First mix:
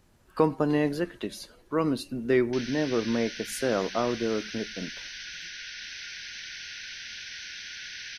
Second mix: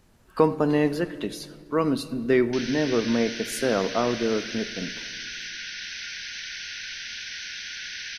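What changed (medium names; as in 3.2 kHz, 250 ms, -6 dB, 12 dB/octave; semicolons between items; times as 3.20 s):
background +3.5 dB; reverb: on, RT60 1.8 s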